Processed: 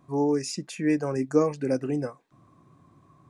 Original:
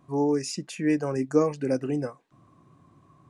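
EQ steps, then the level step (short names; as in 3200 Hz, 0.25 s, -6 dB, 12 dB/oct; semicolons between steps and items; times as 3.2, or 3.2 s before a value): notch 2900 Hz, Q 15; 0.0 dB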